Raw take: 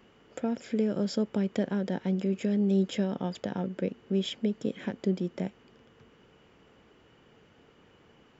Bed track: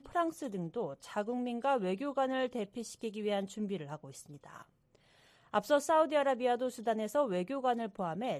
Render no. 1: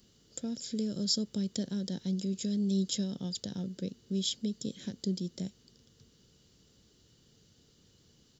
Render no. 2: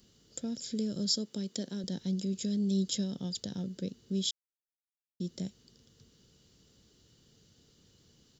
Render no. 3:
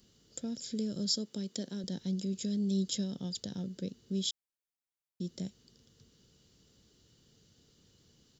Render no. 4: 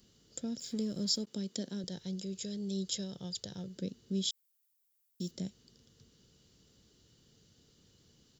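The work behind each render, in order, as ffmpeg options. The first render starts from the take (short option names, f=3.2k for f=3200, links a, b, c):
-af "firequalizer=gain_entry='entry(110,0);entry(270,-7);entry(830,-18);entry(1600,-13);entry(2400,-14);entry(4000,11)':delay=0.05:min_phase=1"
-filter_complex "[0:a]asettb=1/sr,asplit=3[a][b][c];[a]atrim=end=1.164[d];[b]atrim=start=1.16:end=1.84,asetpts=PTS-STARTPTS,afade=t=in:d=0.004:c=qsin,afade=t=out:st=0.676:d=0.004:c=qsin,highpass=220[e];[c]atrim=start=1.836[f];[d][e]acrossfade=d=0.004:c1=hsin:c2=qsin[g];[g][f]acrossfade=d=0.004:c1=qsin:c2=hsin,asplit=3[h][i][j];[h]atrim=end=4.31,asetpts=PTS-STARTPTS,afade=t=out:st=4.306:d=0.004:c=hsin[k];[i]atrim=start=4.31:end=5.2,asetpts=PTS-STARTPTS,volume=0[l];[j]atrim=start=5.2,asetpts=PTS-STARTPTS,afade=t=in:d=0.004:c=hsin[m];[k][l][m]concat=n=3:v=0:a=1"
-af "volume=-1.5dB"
-filter_complex "[0:a]asettb=1/sr,asplit=3[a][b][c];[a]atrim=end=0.594[d];[b]atrim=start=0.59:end=1.27,asetpts=PTS-STARTPTS,afade=t=in:d=0.004:c=qsin,afade=t=out:st=0.676:d=0.004:c=qsin,aeval=exprs='sgn(val(0))*max(abs(val(0))-0.00119,0)':c=same[e];[c]atrim=start=1.266[f];[d][e]acrossfade=d=0.004:c1=hsin:c2=qsin[g];[g][f]acrossfade=d=0.004:c1=qsin:c2=hsin,asettb=1/sr,asplit=3[h][i][j];[h]atrim=end=1.844[k];[i]atrim=start=1.84:end=3.76,asetpts=PTS-STARTPTS,afade=t=in:d=0.004:c=qsin,afade=t=out:st=1.916:d=0.004:c=qsin,equalizer=f=240:t=o:w=0.57:g=-12.5[l];[j]atrim=start=3.756[m];[k][l]acrossfade=d=0.004:c1=hsin:c2=qsin[n];[n][m]acrossfade=d=0.004:c1=qsin:c2=hsin,asplit=3[o][p][q];[o]afade=t=out:st=4.3:d=0.02[r];[p]aemphasis=mode=production:type=75fm,afade=t=in:st=4.3:d=0.02,afade=t=out:st=5.3:d=0.02[s];[q]afade=t=in:st=5.3:d=0.02[t];[r][s][t]amix=inputs=3:normalize=0"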